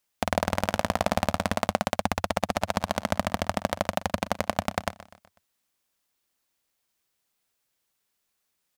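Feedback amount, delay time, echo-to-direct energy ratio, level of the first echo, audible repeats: 48%, 124 ms, -16.0 dB, -17.0 dB, 3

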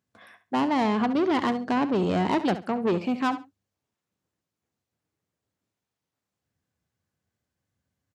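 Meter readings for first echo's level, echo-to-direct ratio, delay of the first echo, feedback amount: -13.0 dB, -13.0 dB, 69 ms, 20%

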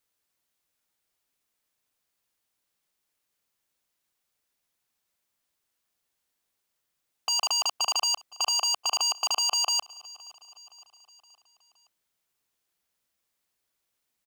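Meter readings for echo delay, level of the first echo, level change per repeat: 518 ms, -23.0 dB, -5.5 dB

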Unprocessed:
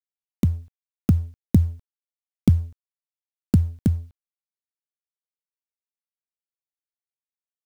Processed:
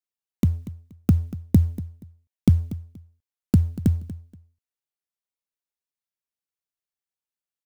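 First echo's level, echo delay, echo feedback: -16.0 dB, 238 ms, 23%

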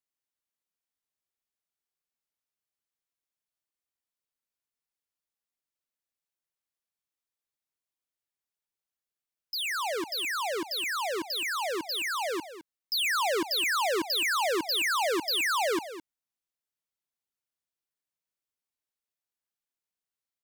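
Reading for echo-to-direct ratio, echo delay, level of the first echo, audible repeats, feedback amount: -13.0 dB, 211 ms, -13.0 dB, 1, no regular repeats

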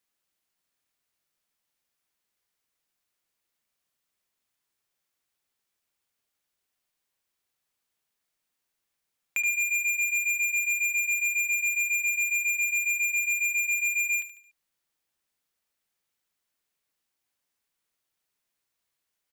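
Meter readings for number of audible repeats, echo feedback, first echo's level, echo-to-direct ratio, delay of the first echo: 4, 44%, -11.5 dB, -10.5 dB, 73 ms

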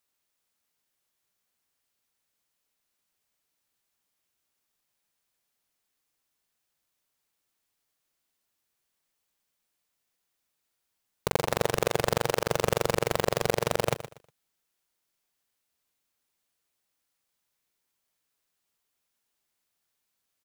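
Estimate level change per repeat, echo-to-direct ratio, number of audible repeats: -11.5 dB, -12.5 dB, 2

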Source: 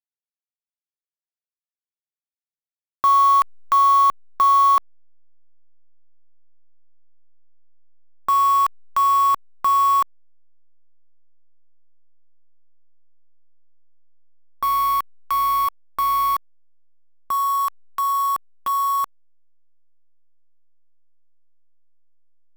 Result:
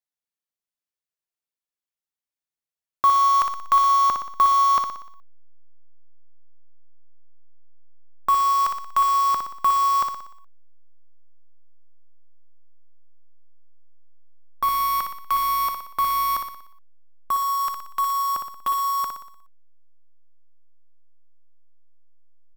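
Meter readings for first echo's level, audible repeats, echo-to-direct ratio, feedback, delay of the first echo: -6.0 dB, 6, -4.5 dB, 53%, 60 ms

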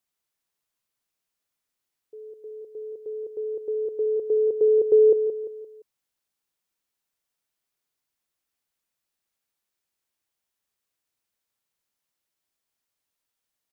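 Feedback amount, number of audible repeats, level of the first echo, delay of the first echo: 40%, 4, -8.5 dB, 173 ms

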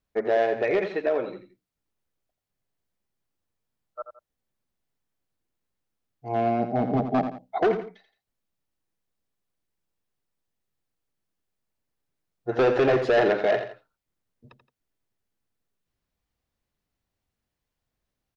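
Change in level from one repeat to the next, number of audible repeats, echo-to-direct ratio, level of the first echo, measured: -9.0 dB, 2, -9.0 dB, -9.5 dB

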